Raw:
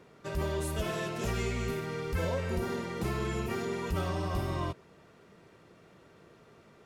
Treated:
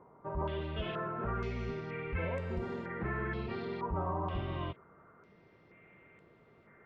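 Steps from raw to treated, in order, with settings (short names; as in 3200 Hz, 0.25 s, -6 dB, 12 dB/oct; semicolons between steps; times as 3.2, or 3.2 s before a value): whine 2100 Hz -64 dBFS; air absorption 380 m; stepped low-pass 2.1 Hz 980–7800 Hz; gain -4 dB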